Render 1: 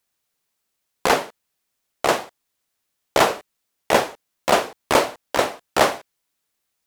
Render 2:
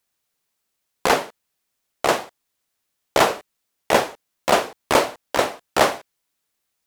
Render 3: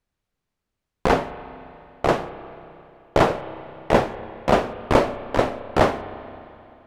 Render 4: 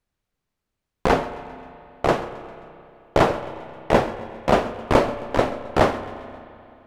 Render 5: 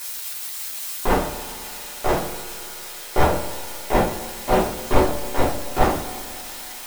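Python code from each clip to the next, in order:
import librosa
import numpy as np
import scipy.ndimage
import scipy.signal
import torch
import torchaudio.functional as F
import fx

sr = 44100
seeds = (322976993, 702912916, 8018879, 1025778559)

y1 = x
y2 = fx.riaa(y1, sr, side='playback')
y2 = fx.rev_spring(y2, sr, rt60_s=2.8, pass_ms=(31, 43), chirp_ms=65, drr_db=12.5)
y2 = y2 * 10.0 ** (-2.0 / 20.0)
y3 = fx.echo_feedback(y2, sr, ms=133, feedback_pct=54, wet_db=-19.0)
y4 = y3 + 0.5 * 10.0 ** (-17.5 / 20.0) * np.diff(np.sign(y3), prepend=np.sign(y3[:1]))
y4 = fx.room_shoebox(y4, sr, seeds[0], volume_m3=120.0, walls='furnished', distance_m=3.2)
y4 = y4 * 10.0 ** (-9.5 / 20.0)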